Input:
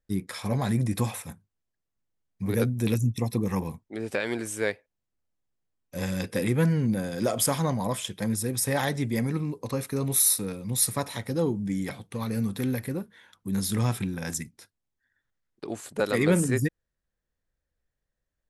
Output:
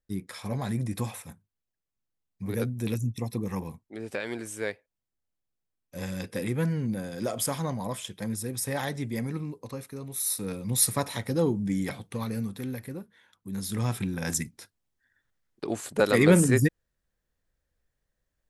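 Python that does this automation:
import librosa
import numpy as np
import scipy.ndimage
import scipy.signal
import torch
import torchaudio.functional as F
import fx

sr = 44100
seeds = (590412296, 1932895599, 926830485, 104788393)

y = fx.gain(x, sr, db=fx.line((9.44, -4.5), (10.13, -12.0), (10.53, 1.0), (12.1, 1.0), (12.58, -6.5), (13.54, -6.5), (14.38, 3.5)))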